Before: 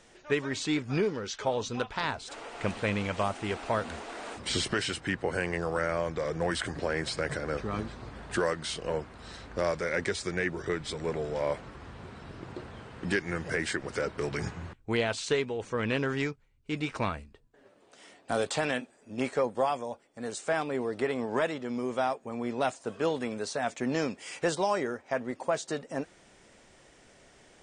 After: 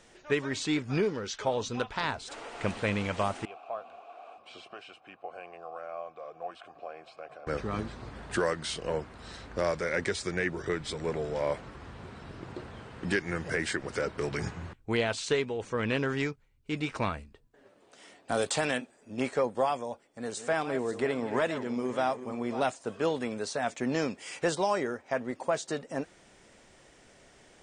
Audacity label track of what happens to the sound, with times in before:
3.450000	7.470000	vowel filter a
18.370000	18.780000	treble shelf 7.9 kHz +10 dB
20.070000	22.630000	backward echo that repeats 282 ms, feedback 46%, level -11 dB

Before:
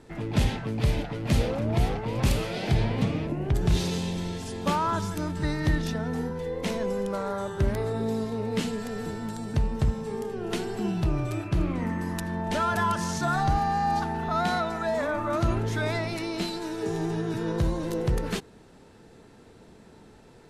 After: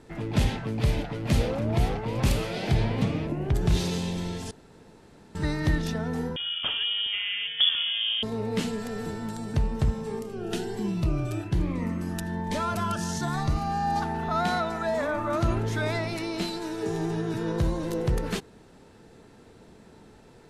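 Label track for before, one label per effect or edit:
4.510000	5.350000	room tone
6.360000	8.230000	frequency inversion carrier 3.4 kHz
10.190000	13.960000	Shepard-style phaser rising 1.2 Hz

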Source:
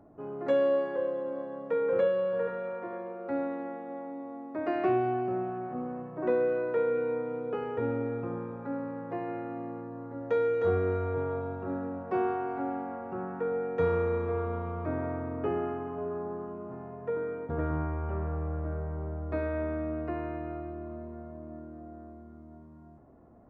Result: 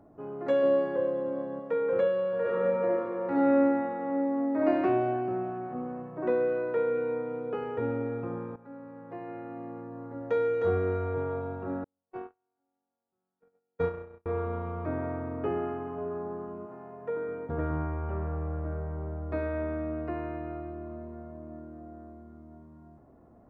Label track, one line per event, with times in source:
0.630000	1.600000	bass shelf 290 Hz +9.5 dB
2.400000	4.660000	reverb throw, RT60 1.6 s, DRR -6.5 dB
8.560000	10.040000	fade in, from -14 dB
11.840000	14.260000	gate -26 dBFS, range -50 dB
16.650000	17.270000	high-pass 460 Hz -> 170 Hz 6 dB/octave

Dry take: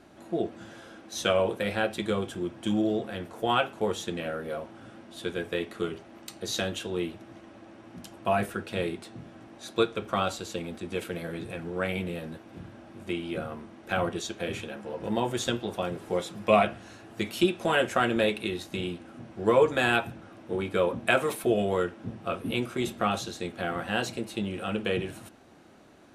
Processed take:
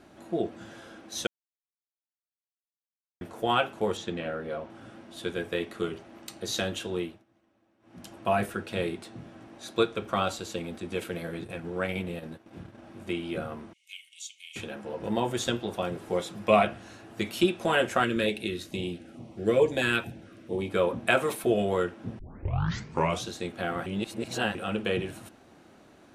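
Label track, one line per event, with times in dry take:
1.270000	3.210000	mute
3.970000	4.700000	distance through air 86 m
6.960000	8.080000	dip -20.5 dB, fades 0.28 s
11.290000	12.830000	transient shaper attack -1 dB, sustain -10 dB
13.730000	14.560000	rippled Chebyshev high-pass 2.1 kHz, ripple 9 dB
18.040000	20.700000	step-sequenced notch 4.5 Hz 760–1600 Hz
22.190000	22.190000	tape start 1.08 s
23.860000	24.550000	reverse

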